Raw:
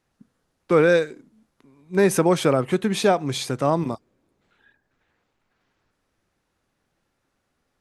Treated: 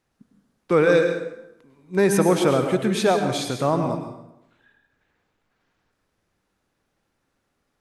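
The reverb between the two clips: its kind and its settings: plate-style reverb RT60 0.86 s, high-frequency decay 0.75×, pre-delay 90 ms, DRR 5.5 dB; gain -1 dB

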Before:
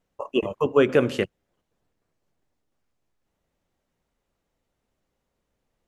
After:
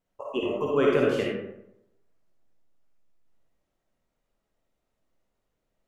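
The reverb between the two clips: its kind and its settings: digital reverb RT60 0.82 s, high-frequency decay 0.5×, pre-delay 15 ms, DRR -3 dB; gain -7 dB

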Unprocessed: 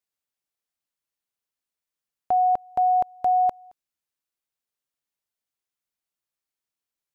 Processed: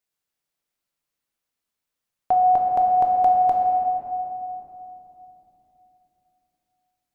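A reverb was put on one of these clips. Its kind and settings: shoebox room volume 170 m³, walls hard, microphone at 0.47 m; gain +2.5 dB

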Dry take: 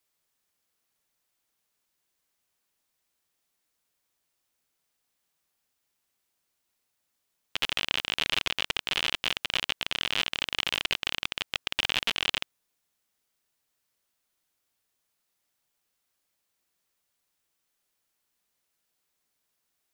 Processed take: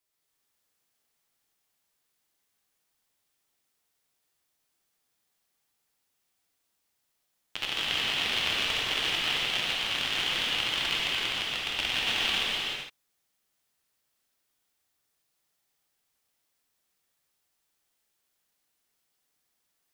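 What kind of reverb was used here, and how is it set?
non-linear reverb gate 0.48 s flat, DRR -6 dB; gain -5.5 dB

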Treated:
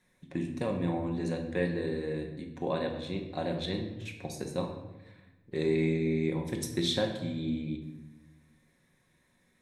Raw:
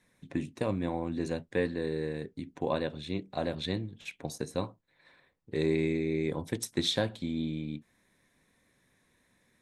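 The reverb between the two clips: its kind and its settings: shoebox room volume 480 m³, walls mixed, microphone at 1 m; gain -2.5 dB

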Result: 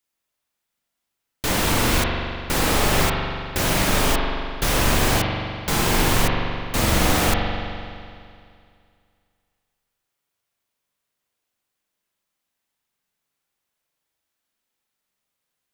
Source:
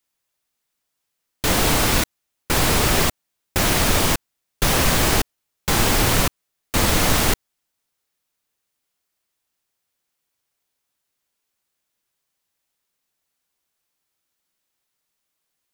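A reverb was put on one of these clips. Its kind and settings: spring tank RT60 2.3 s, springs 42 ms, chirp 35 ms, DRR -0.5 dB; gain -3.5 dB

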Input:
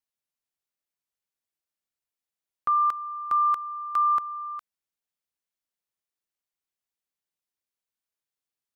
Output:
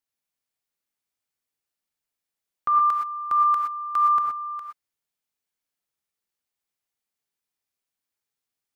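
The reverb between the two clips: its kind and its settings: non-linear reverb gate 0.14 s rising, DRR 1 dB; gain +1 dB

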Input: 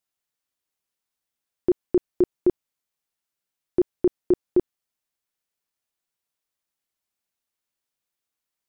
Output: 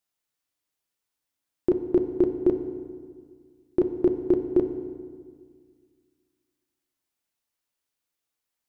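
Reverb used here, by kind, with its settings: FDN reverb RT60 1.8 s, low-frequency decay 1.25×, high-frequency decay 0.7×, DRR 6.5 dB

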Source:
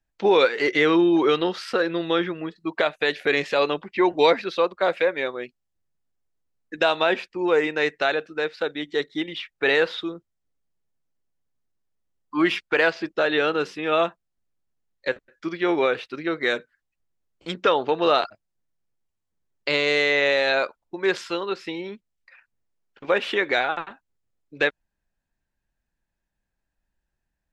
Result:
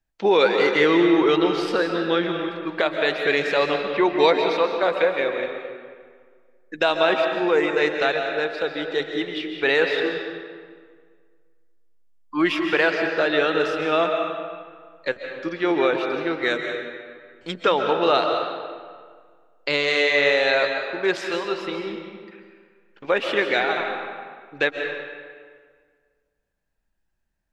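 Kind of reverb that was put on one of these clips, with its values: digital reverb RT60 1.8 s, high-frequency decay 0.7×, pre-delay 0.1 s, DRR 3.5 dB

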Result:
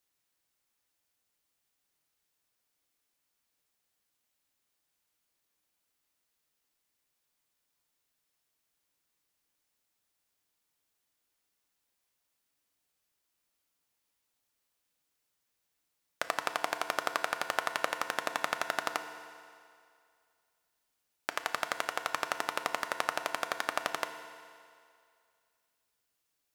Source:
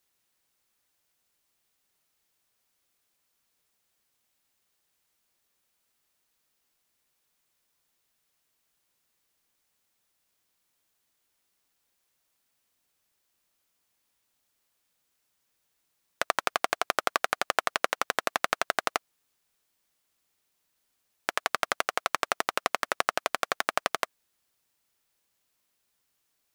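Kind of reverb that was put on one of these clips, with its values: FDN reverb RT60 2.3 s, low-frequency decay 0.8×, high-frequency decay 0.95×, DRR 8 dB; gain -5.5 dB

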